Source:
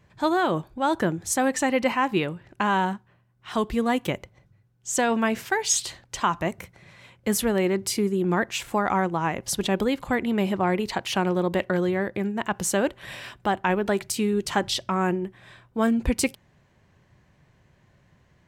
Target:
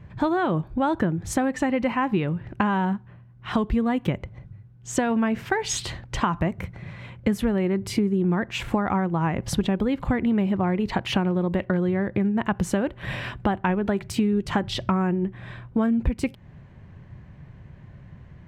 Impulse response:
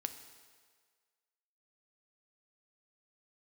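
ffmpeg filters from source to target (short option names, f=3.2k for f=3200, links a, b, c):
-af "bass=f=250:g=10,treble=f=4k:g=-14,acompressor=threshold=-27dB:ratio=6,volume=7dB"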